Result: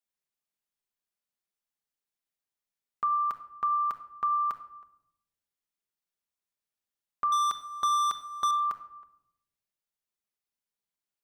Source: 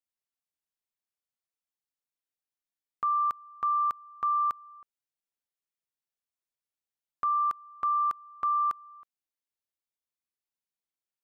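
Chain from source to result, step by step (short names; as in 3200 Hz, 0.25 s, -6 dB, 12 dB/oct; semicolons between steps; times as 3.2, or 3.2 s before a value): 7.32–8.51 sample leveller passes 3; shoebox room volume 2100 m³, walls furnished, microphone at 1.3 m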